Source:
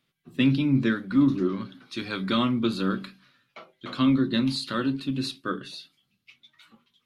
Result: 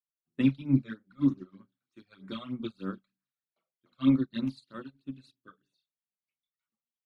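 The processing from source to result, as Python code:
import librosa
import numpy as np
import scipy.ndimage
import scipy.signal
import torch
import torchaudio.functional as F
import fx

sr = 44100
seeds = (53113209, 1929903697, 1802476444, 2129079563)

y = fx.hum_notches(x, sr, base_hz=60, count=5)
y = fx.phaser_stages(y, sr, stages=12, low_hz=280.0, high_hz=4900.0, hz=3.2, feedback_pct=15)
y = fx.upward_expand(y, sr, threshold_db=-41.0, expansion=2.5)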